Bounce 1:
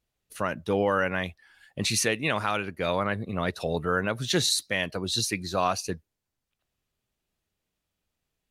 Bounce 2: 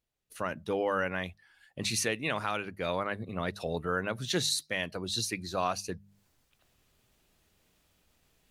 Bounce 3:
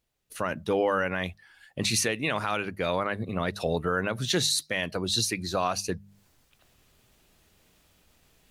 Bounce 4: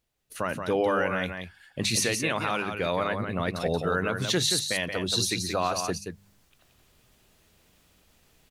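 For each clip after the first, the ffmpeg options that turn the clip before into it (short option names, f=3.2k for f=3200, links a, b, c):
-af "bandreject=f=50:t=h:w=6,bandreject=f=100:t=h:w=6,bandreject=f=150:t=h:w=6,bandreject=f=200:t=h:w=6,areverse,acompressor=mode=upward:threshold=-48dB:ratio=2.5,areverse,volume=-5dB"
-af "alimiter=limit=-21.5dB:level=0:latency=1:release=74,volume=6.5dB"
-af "aecho=1:1:177:0.473"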